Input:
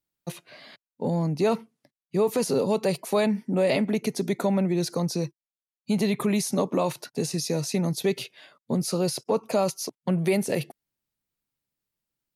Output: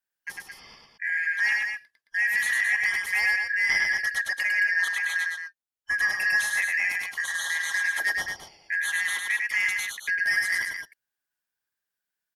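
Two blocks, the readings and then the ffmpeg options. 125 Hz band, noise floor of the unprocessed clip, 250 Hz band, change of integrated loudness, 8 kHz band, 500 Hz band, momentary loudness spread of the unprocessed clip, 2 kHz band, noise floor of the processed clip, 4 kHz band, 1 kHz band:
under -30 dB, under -85 dBFS, under -30 dB, +2.0 dB, -0.5 dB, -28.5 dB, 8 LU, +19.0 dB, under -85 dBFS, +1.0 dB, -8.5 dB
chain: -filter_complex "[0:a]afftfilt=real='real(if(lt(b,272),68*(eq(floor(b/68),0)*2+eq(floor(b/68),1)*0+eq(floor(b/68),2)*3+eq(floor(b/68),3)*1)+mod(b,68),b),0)':imag='imag(if(lt(b,272),68*(eq(floor(b/68),0)*2+eq(floor(b/68),1)*0+eq(floor(b/68),2)*3+eq(floor(b/68),3)*1)+mod(b,68),b),0)':win_size=2048:overlap=0.75,asoftclip=type=hard:threshold=-15.5dB,adynamicequalizer=threshold=0.00224:dfrequency=820:dqfactor=7.3:tfrequency=820:tqfactor=7.3:attack=5:release=100:ratio=0.375:range=2.5:mode=boostabove:tftype=bell,asplit=2[a][b];[b]aecho=0:1:102|218.7:0.708|0.447[c];[a][c]amix=inputs=2:normalize=0,volume=-3dB"

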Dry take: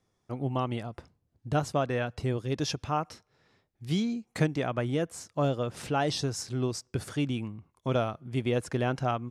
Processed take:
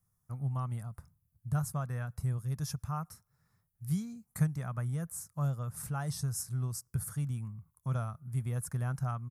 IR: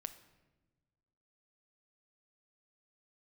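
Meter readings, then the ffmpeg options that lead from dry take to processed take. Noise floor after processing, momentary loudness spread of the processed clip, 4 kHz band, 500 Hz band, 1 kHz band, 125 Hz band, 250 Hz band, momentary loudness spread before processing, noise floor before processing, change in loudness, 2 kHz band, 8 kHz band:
-79 dBFS, 9 LU, -14.0 dB, -17.5 dB, -10.5 dB, 0.0 dB, -8.0 dB, 8 LU, -76 dBFS, -5.0 dB, -11.5 dB, 0.0 dB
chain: -af "firequalizer=gain_entry='entry(160,0);entry(290,-22);entry(1200,-6);entry(2900,-23);entry(5200,-10);entry(11000,12)':delay=0.05:min_phase=1"

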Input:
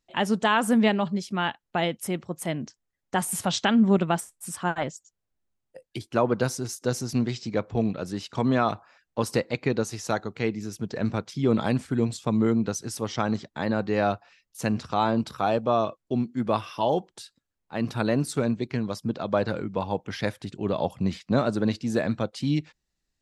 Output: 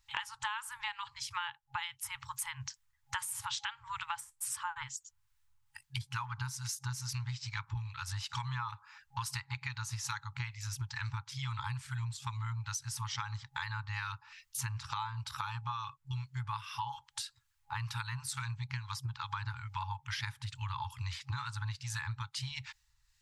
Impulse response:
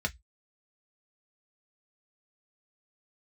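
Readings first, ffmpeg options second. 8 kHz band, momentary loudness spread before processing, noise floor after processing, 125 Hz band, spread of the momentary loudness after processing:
-4.0 dB, 9 LU, -74 dBFS, -7.5 dB, 4 LU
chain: -filter_complex "[0:a]afftfilt=real='re*(1-between(b*sr/4096,130,820))':imag='im*(1-between(b*sr/4096,130,820))':win_size=4096:overlap=0.75,acrossover=split=1300[a][b];[a]aeval=exprs='val(0)*(1-0.5/2+0.5/2*cos(2*PI*2.3*n/s))':c=same[c];[b]aeval=exprs='val(0)*(1-0.5/2-0.5/2*cos(2*PI*2.3*n/s))':c=same[d];[c][d]amix=inputs=2:normalize=0,acompressor=threshold=-46dB:ratio=10,volume=10.5dB"

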